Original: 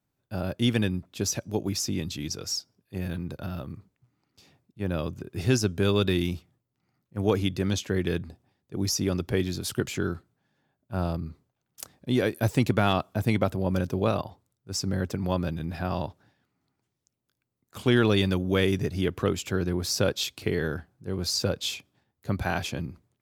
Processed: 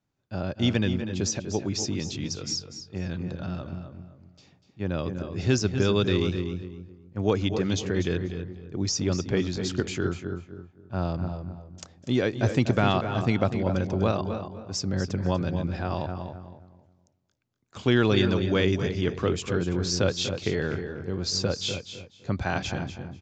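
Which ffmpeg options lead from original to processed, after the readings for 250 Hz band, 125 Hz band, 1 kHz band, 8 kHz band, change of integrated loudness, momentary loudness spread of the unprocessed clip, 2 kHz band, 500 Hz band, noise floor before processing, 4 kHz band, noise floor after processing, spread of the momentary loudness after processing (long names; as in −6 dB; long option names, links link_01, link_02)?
+1.0 dB, +1.0 dB, +0.5 dB, −0.5 dB, +0.5 dB, 13 LU, +0.5 dB, +1.0 dB, −82 dBFS, +0.5 dB, −63 dBFS, 14 LU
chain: -filter_complex "[0:a]asplit=2[link_01][link_02];[link_02]aecho=0:1:244|488:0.266|0.0426[link_03];[link_01][link_03]amix=inputs=2:normalize=0,aresample=16000,aresample=44100,asplit=2[link_04][link_05];[link_05]adelay=266,lowpass=frequency=1100:poles=1,volume=-7.5dB,asplit=2[link_06][link_07];[link_07]adelay=266,lowpass=frequency=1100:poles=1,volume=0.3,asplit=2[link_08][link_09];[link_09]adelay=266,lowpass=frequency=1100:poles=1,volume=0.3,asplit=2[link_10][link_11];[link_11]adelay=266,lowpass=frequency=1100:poles=1,volume=0.3[link_12];[link_06][link_08][link_10][link_12]amix=inputs=4:normalize=0[link_13];[link_04][link_13]amix=inputs=2:normalize=0"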